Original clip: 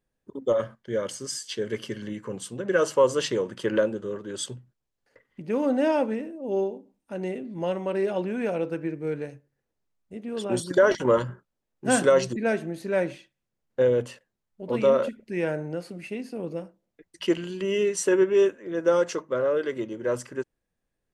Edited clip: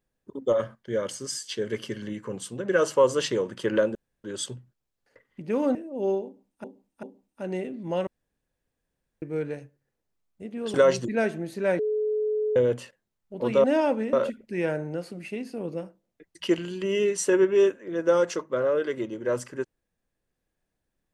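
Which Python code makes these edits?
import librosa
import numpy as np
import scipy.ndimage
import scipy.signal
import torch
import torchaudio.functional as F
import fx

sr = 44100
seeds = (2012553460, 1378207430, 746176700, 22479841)

y = fx.edit(x, sr, fx.room_tone_fill(start_s=3.95, length_s=0.29),
    fx.move(start_s=5.75, length_s=0.49, to_s=14.92),
    fx.repeat(start_s=6.74, length_s=0.39, count=3),
    fx.room_tone_fill(start_s=7.78, length_s=1.15),
    fx.cut(start_s=10.45, length_s=1.57),
    fx.bleep(start_s=13.07, length_s=0.77, hz=427.0, db=-23.0), tone=tone)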